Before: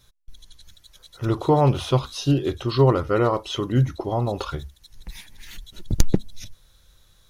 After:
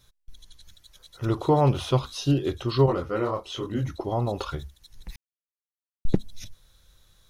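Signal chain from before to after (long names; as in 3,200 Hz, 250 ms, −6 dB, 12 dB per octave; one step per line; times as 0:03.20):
0:02.86–0:03.85: micro pitch shift up and down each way 39 cents
0:05.16–0:06.05: silence
level −2.5 dB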